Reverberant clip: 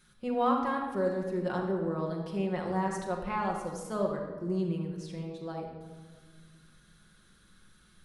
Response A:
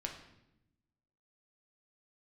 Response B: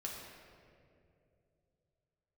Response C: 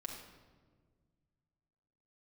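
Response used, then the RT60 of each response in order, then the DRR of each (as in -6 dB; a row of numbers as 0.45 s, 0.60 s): C; 0.85 s, 2.6 s, 1.6 s; 1.5 dB, -3.0 dB, -0.5 dB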